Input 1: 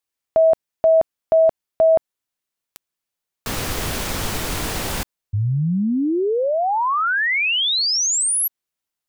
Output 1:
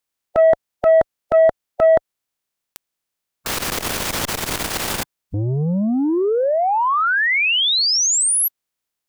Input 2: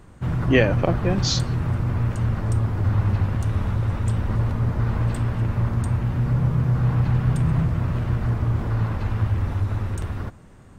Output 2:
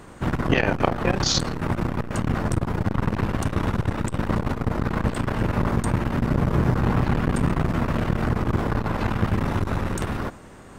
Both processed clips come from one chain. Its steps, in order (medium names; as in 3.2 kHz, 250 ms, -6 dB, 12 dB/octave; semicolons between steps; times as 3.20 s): spectral peaks clipped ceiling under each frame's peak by 13 dB; transformer saturation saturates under 550 Hz; trim +3 dB